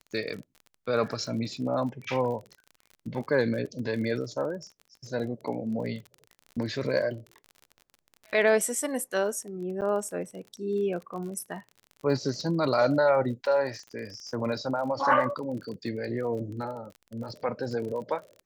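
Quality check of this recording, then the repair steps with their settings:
surface crackle 39 per second −37 dBFS
0:09.81–0:09.82: drop-out 8.8 ms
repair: click removal
repair the gap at 0:09.81, 8.8 ms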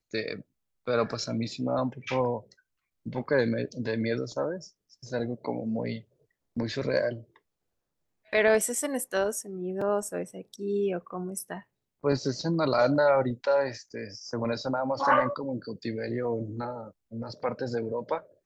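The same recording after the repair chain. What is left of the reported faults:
none of them is left

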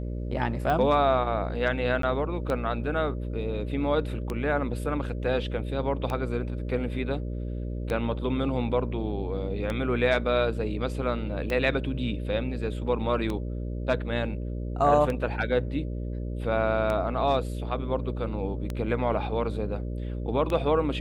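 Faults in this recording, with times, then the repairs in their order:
mains buzz 60 Hz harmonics 10 −32 dBFS
scratch tick 33 1/3 rpm −17 dBFS
0:02.02–0:02.03: drop-out 13 ms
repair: click removal
hum removal 60 Hz, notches 10
repair the gap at 0:02.02, 13 ms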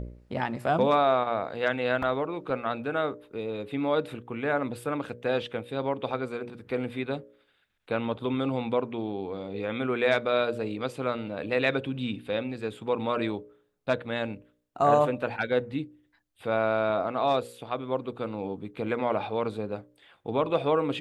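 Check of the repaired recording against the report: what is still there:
none of them is left

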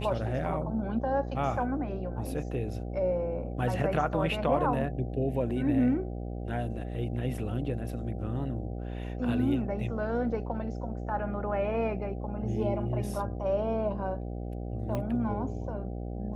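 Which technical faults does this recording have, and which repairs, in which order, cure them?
mains buzz 60 Hz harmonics 13 −36 dBFS
0:14.95: click −20 dBFS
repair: click removal
hum removal 60 Hz, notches 13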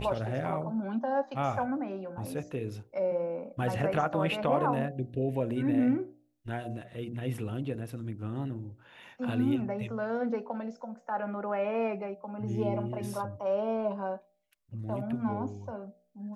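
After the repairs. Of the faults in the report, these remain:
0:14.95: click

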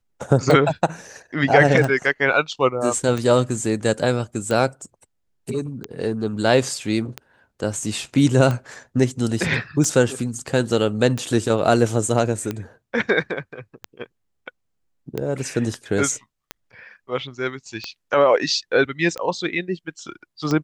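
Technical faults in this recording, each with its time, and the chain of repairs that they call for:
scratch tick 45 rpm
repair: click removal

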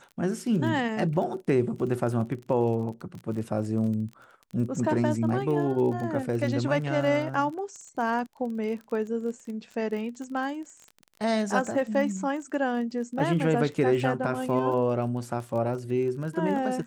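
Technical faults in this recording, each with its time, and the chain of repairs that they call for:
surface crackle 30 per second −35 dBFS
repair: click removal

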